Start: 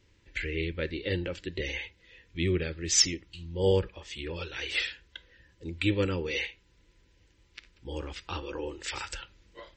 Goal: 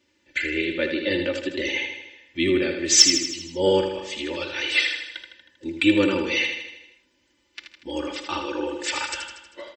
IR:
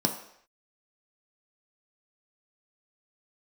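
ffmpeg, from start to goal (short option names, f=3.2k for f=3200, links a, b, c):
-filter_complex "[0:a]acontrast=56,aecho=1:1:3.4:0.78,agate=range=-7dB:threshold=-43dB:ratio=16:detection=peak,highpass=190,asplit=2[a][b];[b]aecho=0:1:79|158|237|316|395|474|553:0.447|0.255|0.145|0.0827|0.0472|0.0269|0.0153[c];[a][c]amix=inputs=2:normalize=0"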